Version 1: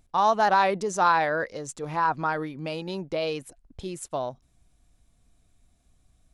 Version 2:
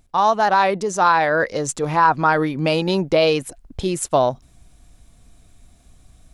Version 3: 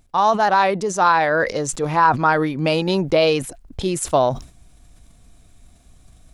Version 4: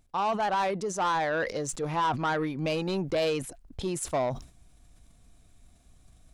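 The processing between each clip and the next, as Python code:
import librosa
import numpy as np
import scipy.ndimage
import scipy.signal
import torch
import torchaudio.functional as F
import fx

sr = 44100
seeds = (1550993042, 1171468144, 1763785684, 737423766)

y1 = fx.rider(x, sr, range_db=5, speed_s=0.5)
y1 = y1 * 10.0 ** (8.5 / 20.0)
y2 = fx.sustainer(y1, sr, db_per_s=140.0)
y3 = 10.0 ** (-13.5 / 20.0) * np.tanh(y2 / 10.0 ** (-13.5 / 20.0))
y3 = y3 * 10.0 ** (-8.0 / 20.0)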